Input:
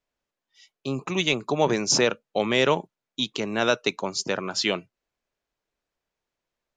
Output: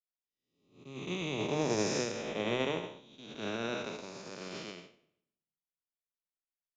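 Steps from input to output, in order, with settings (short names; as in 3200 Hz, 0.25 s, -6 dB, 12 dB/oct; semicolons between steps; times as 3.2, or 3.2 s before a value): time blur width 0.42 s; in parallel at -2 dB: limiter -23 dBFS, peak gain reduction 8.5 dB; 2.22–2.78 on the sum: notches 50/100/150/200/250/300/350/400/450/500 Hz; feedback echo 0.112 s, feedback 59%, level -24 dB; on a send at -15 dB: reverb RT60 0.70 s, pre-delay 11 ms; on the sum: upward expander 2.5:1, over -39 dBFS; gain -5 dB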